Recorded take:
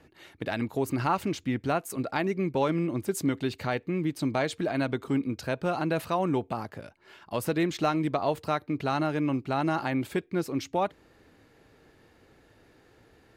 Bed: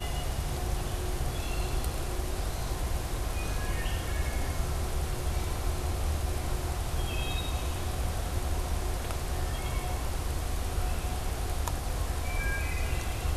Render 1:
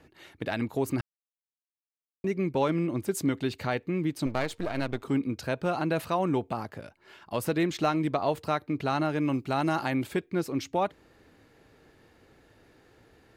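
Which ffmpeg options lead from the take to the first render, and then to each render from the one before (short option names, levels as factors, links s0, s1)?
-filter_complex "[0:a]asettb=1/sr,asplit=3[s0][s1][s2];[s0]atrim=end=4.264[s3];[s1]atrim=start=4.26:end=5.03,asetpts=PTS-STARTPTS,afade=t=in:d=0.004:c=qsin,afade=t=out:st=0.766:d=0.004:c=qsin,aeval=exprs='if(lt(val(0),0),0.251*val(0),val(0))':c=same[s4];[s2]atrim=start=5.026[s5];[s3][s4]acrossfade=d=0.004:c1=hsin:c2=qsin[s6];[s6][s5]acrossfade=d=0.004:c1=qsin:c2=hsin,asettb=1/sr,asplit=3[s7][s8][s9];[s7]atrim=end=9.204[s10];[s8]atrim=start=9.2:end=10.04,asetpts=PTS-STARTPTS,afade=t=in:d=0.004:c=qsin,afade=t=out:st=0.836:d=0.004:c=qsin,highshelf=f=5500:g=8[s11];[s9]atrim=start=10.036[s12];[s10][s11]acrossfade=d=0.004:c1=hsin:c2=qsin[s13];[s13][s12]acrossfade=d=0.004:c1=qsin:c2=hsin,asplit=3[s14][s15][s16];[s14]atrim=end=1.01,asetpts=PTS-STARTPTS,afade=t=out:st=1.006:d=0.004:c=hsin[s17];[s15]atrim=start=1.01:end=2.24,asetpts=PTS-STARTPTS,volume=0[s18];[s16]atrim=start=2.24,asetpts=PTS-STARTPTS,afade=t=in:d=0.004:c=hsin[s19];[s17][s18][s19]concat=n=3:v=0:a=1"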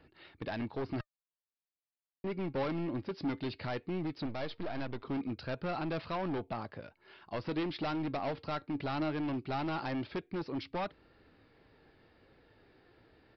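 -af "aresample=11025,volume=22.4,asoftclip=hard,volume=0.0447,aresample=44100,flanger=delay=0.7:depth=3:regen=84:speed=0.18:shape=sinusoidal"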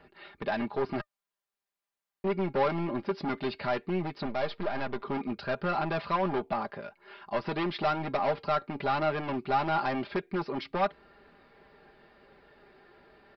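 -af "equalizer=f=1000:w=0.45:g=8,aecho=1:1:5:0.67"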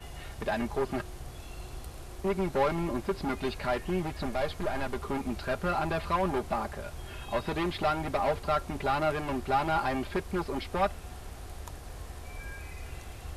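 -filter_complex "[1:a]volume=0.282[s0];[0:a][s0]amix=inputs=2:normalize=0"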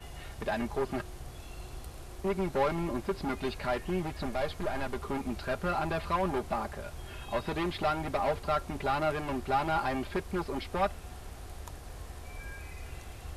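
-af "volume=0.841"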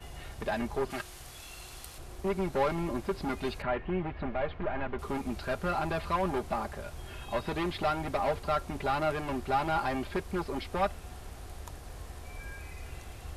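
-filter_complex "[0:a]asettb=1/sr,asplit=3[s0][s1][s2];[s0]atrim=end=0.904[s3];[s1]atrim=start=0.9:end=1.98,asetpts=PTS-STARTPTS,afade=t=in:d=0.004:c=qsin,afade=t=out:st=1.076:d=0.004:c=qsin,tiltshelf=f=970:g=-7[s4];[s2]atrim=start=1.976[s5];[s3][s4]acrossfade=d=0.004:c1=hsin:c2=qsin[s6];[s6][s5]acrossfade=d=0.004:c1=qsin:c2=hsin,asettb=1/sr,asplit=3[s7][s8][s9];[s7]atrim=end=3.624[s10];[s8]atrim=start=3.62:end=4.99,asetpts=PTS-STARTPTS,afade=t=in:d=0.004:c=qsin,afade=t=out:st=1.366:d=0.004:c=qsin,lowpass=f=2800:w=0.5412,lowpass=f=2800:w=1.3066[s11];[s9]atrim=start=4.986[s12];[s10][s11]acrossfade=d=0.004:c1=hsin:c2=qsin[s13];[s13][s12]acrossfade=d=0.004:c1=qsin:c2=hsin"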